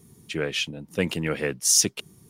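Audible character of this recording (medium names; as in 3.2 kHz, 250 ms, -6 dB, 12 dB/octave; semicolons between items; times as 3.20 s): noise floor -56 dBFS; spectral tilt -3.0 dB/octave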